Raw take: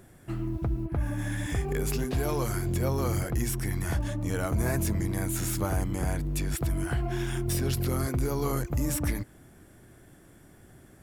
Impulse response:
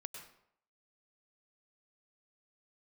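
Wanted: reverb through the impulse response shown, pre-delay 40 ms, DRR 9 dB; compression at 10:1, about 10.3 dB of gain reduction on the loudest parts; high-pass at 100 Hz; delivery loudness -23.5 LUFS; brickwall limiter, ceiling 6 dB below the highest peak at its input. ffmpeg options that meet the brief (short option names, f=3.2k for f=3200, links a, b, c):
-filter_complex "[0:a]highpass=100,acompressor=threshold=-36dB:ratio=10,alimiter=level_in=8dB:limit=-24dB:level=0:latency=1,volume=-8dB,asplit=2[a][b];[1:a]atrim=start_sample=2205,adelay=40[c];[b][c]afir=irnorm=-1:irlink=0,volume=-5.5dB[d];[a][d]amix=inputs=2:normalize=0,volume=17.5dB"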